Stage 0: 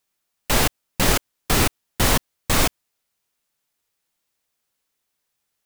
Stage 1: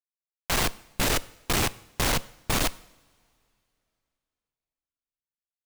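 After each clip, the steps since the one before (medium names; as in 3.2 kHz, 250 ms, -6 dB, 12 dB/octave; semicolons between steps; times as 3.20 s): Schmitt trigger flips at -26 dBFS; two-slope reverb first 0.72 s, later 2.9 s, from -18 dB, DRR 17.5 dB; trim +1.5 dB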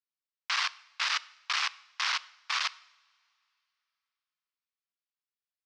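elliptic band-pass 1.1–5.3 kHz, stop band 70 dB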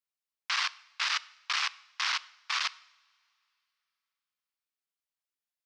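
bass shelf 420 Hz -7.5 dB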